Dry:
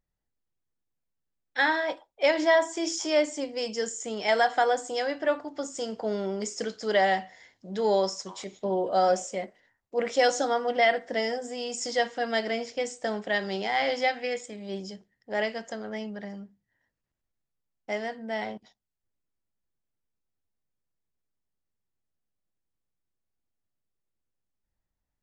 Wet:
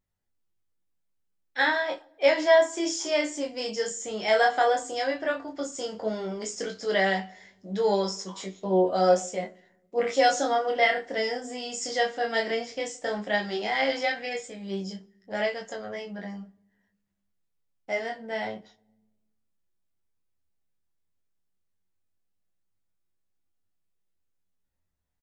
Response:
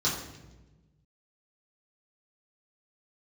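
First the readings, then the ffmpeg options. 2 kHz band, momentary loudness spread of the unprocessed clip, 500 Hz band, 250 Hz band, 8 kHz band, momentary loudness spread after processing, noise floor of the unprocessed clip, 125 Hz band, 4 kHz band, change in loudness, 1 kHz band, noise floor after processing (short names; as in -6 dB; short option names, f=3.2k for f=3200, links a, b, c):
+1.0 dB, 13 LU, +1.0 dB, +1.0 dB, +1.0 dB, 14 LU, -84 dBFS, n/a, +1.0 dB, +1.0 dB, +0.5 dB, -76 dBFS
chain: -filter_complex "[0:a]asplit=2[a][b];[b]aecho=0:1:11|38:0.501|0.188[c];[a][c]amix=inputs=2:normalize=0,flanger=delay=20:depth=7.9:speed=0.13,asplit=2[d][e];[1:a]atrim=start_sample=2205[f];[e][f]afir=irnorm=-1:irlink=0,volume=-31dB[g];[d][g]amix=inputs=2:normalize=0,volume=3dB"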